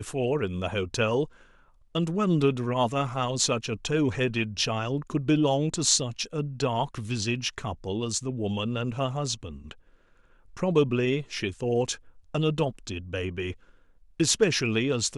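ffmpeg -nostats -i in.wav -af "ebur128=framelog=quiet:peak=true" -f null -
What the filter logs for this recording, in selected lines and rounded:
Integrated loudness:
  I:         -27.3 LUFS
  Threshold: -37.8 LUFS
Loudness range:
  LRA:         4.4 LU
  Threshold: -47.9 LUFS
  LRA low:   -30.5 LUFS
  LRA high:  -26.1 LUFS
True peak:
  Peak:       -6.4 dBFS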